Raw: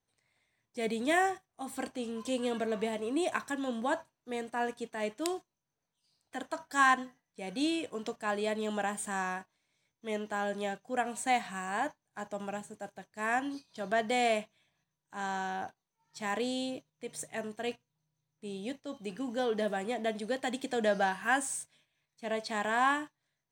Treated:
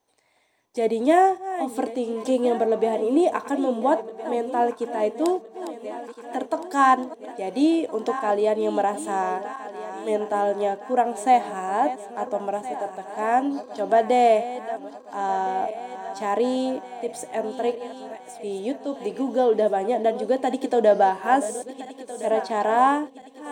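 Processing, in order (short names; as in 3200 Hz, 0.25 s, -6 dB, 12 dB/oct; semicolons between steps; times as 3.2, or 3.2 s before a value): regenerating reverse delay 0.683 s, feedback 66%, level -13.5 dB; band shelf 500 Hz +12.5 dB 2.3 oct; mismatched tape noise reduction encoder only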